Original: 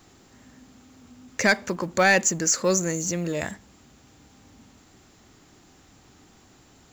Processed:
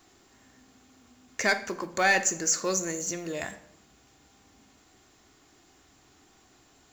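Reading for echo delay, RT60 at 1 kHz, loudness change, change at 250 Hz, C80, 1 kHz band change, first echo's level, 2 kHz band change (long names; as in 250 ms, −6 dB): no echo audible, 0.70 s, −4.0 dB, −8.0 dB, 17.0 dB, −3.0 dB, no echo audible, −3.5 dB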